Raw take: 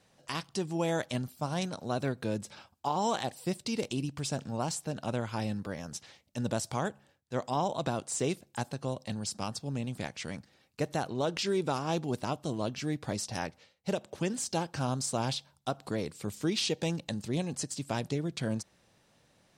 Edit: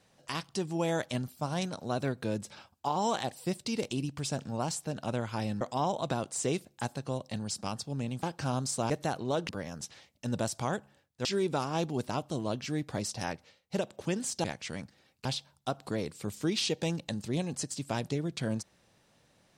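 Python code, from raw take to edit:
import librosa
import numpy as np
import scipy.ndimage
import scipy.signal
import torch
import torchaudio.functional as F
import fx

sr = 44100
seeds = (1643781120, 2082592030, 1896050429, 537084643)

y = fx.edit(x, sr, fx.move(start_s=5.61, length_s=1.76, to_s=11.39),
    fx.swap(start_s=9.99, length_s=0.81, other_s=14.58, other_length_s=0.67), tone=tone)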